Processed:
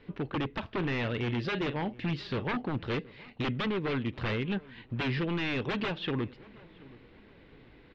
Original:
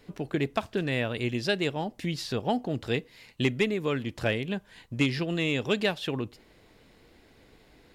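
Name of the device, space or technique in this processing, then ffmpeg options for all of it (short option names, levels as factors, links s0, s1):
synthesiser wavefolder: -filter_complex "[0:a]asettb=1/sr,asplit=3[s0][s1][s2];[s0]atrim=end=0.754[s3];[s1]atrim=start=0.75:end=2.63,asetpts=PTS-STARTPTS,afade=t=in:d=0.004:c=qsin,afade=t=out:st=1.876:d=0.004:c=qsin,asplit=2[s4][s5];[s5]adelay=42,volume=0.2[s6];[s4][s6]amix=inputs=2:normalize=0,atrim=end_sample=82908[s7];[s2]atrim=start=2.626[s8];[s3][s7]acrossfade=d=0.004:c1=hsin:c2=qsin[s9];[s9][s8]acrossfade=d=0.004:c1=qsin:c2=hsin,aeval=exprs='0.0501*(abs(mod(val(0)/0.0501+3,4)-2)-1)':c=same,lowpass=f=3400:w=0.5412,lowpass=f=3400:w=1.3066,equalizer=f=690:t=o:w=0.49:g=-5.5,asplit=2[s10][s11];[s11]adelay=724,lowpass=f=1700:p=1,volume=0.0891,asplit=2[s12][s13];[s13]adelay=724,lowpass=f=1700:p=1,volume=0.41,asplit=2[s14][s15];[s15]adelay=724,lowpass=f=1700:p=1,volume=0.41[s16];[s10][s12][s14][s16]amix=inputs=4:normalize=0,volume=1.19"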